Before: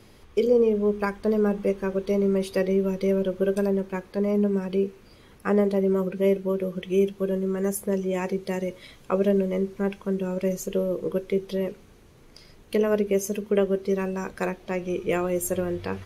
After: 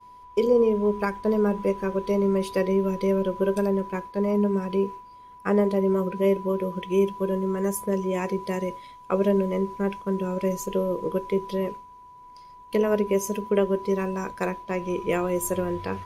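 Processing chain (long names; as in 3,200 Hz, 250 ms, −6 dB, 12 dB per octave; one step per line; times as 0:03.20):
steady tone 990 Hz −36 dBFS
downward expander −32 dBFS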